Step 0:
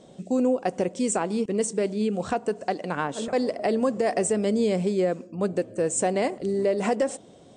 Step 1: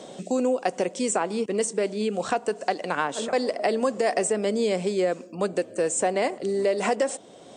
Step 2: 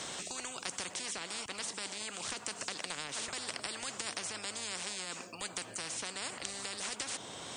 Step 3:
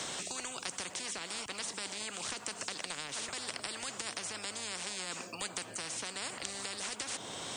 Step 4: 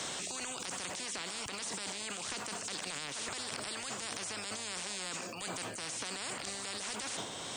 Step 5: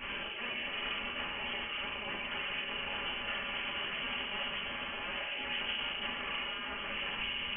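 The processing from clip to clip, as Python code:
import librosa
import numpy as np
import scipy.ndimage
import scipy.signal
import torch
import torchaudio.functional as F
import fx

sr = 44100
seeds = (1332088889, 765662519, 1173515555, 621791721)

y1 = fx.highpass(x, sr, hz=510.0, slope=6)
y1 = fx.band_squash(y1, sr, depth_pct=40)
y1 = F.gain(torch.from_numpy(y1), 3.5).numpy()
y2 = fx.spectral_comp(y1, sr, ratio=10.0)
y2 = F.gain(torch.from_numpy(y2), -4.5).numpy()
y3 = fx.rider(y2, sr, range_db=10, speed_s=0.5)
y3 = fx.quant_dither(y3, sr, seeds[0], bits=12, dither='none')
y3 = fx.band_squash(y3, sr, depth_pct=40)
y4 = fx.transient(y3, sr, attack_db=-7, sustain_db=9)
y5 = y4 + 10.0 ** (-12.0 / 20.0) * np.pad(y4, (int(613 * sr / 1000.0), 0))[:len(y4)]
y5 = fx.rev_fdn(y5, sr, rt60_s=0.99, lf_ratio=1.55, hf_ratio=0.5, size_ms=20.0, drr_db=-9.5)
y5 = fx.freq_invert(y5, sr, carrier_hz=3200)
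y5 = F.gain(torch.from_numpy(y5), -5.5).numpy()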